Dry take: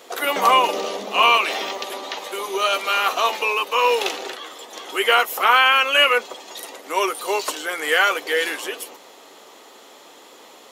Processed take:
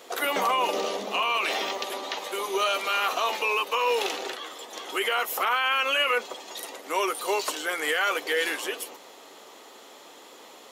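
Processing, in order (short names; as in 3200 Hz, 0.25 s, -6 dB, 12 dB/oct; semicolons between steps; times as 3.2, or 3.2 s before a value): limiter -13 dBFS, peak gain reduction 10.5 dB; gain -2.5 dB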